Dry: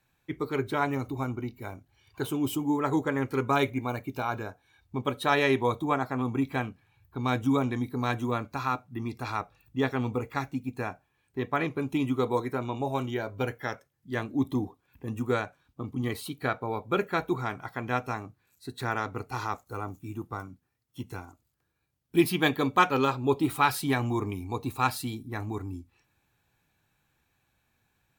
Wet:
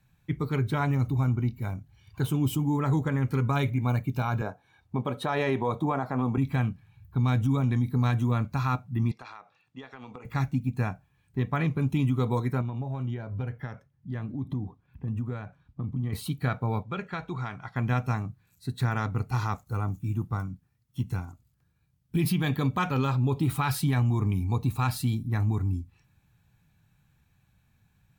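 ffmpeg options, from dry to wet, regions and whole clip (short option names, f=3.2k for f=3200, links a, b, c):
-filter_complex "[0:a]asettb=1/sr,asplit=3[a][b][c];[a]atrim=end=4.414[d];[b]atrim=start=4.41:end=6.38,asetpts=PTS-STARTPTS,afade=t=in:d=0.004:c=qsin,afade=t=out:st=1.966:d=0.004:c=qsin,aemphasis=mode=production:type=75kf,acontrast=67,bandpass=f=610:t=q:w=0.85[e];[c]atrim=start=6.376[f];[d][e]acrossfade=d=0.004:c1=hsin:c2=qsin[g];[g][f]acrossfade=d=0.004:c1=qsin:c2=hsin,asettb=1/sr,asplit=3[h][i][j];[h]atrim=end=9.114[k];[i]atrim=start=9.11:end=10.25,asetpts=PTS-STARTPTS,afade=t=in:d=0.004:c=qsin,afade=t=out:st=1.136:d=0.004:c=qsin,highpass=490,lowpass=5k,acompressor=threshold=-39dB:ratio=16:attack=3.2:release=140:knee=1:detection=peak[l];[j]atrim=start=10.246[m];[k][l]acrossfade=d=0.004:c1=hsin:c2=qsin[n];[n][m]acrossfade=d=0.004:c1=qsin:c2=hsin,asettb=1/sr,asplit=3[o][p][q];[o]atrim=end=12.614[r];[p]atrim=start=12.61:end=16.13,asetpts=PTS-STARTPTS,afade=t=in:d=0.004:c=qsin,afade=t=out:st=3.516:d=0.004:c=qsin,lowpass=f=1.9k:p=1,acompressor=threshold=-37dB:ratio=3:attack=3.2:release=140:knee=1:detection=peak[s];[q]atrim=start=16.126[t];[r][s]acrossfade=d=0.004:c1=hsin:c2=qsin[u];[u][t]acrossfade=d=0.004:c1=qsin:c2=hsin,asettb=1/sr,asplit=3[v][w][x];[v]atrim=end=16.834[y];[w]atrim=start=16.83:end=17.76,asetpts=PTS-STARTPTS,afade=t=in:d=0.004:c=qsin,afade=t=out:st=0.926:d=0.004:c=qsin,lowpass=5.4k,lowshelf=f=410:g=-9.5,acompressor=threshold=-32dB:ratio=2:attack=3.2:release=140:knee=1:detection=peak[z];[x]atrim=start=17.756[aa];[y][z]acrossfade=d=0.004:c1=hsin:c2=qsin[ab];[ab][aa]acrossfade=d=0.004:c1=qsin:c2=hsin,lowshelf=f=240:t=q:w=1.5:g=10,alimiter=limit=-17.5dB:level=0:latency=1:release=55"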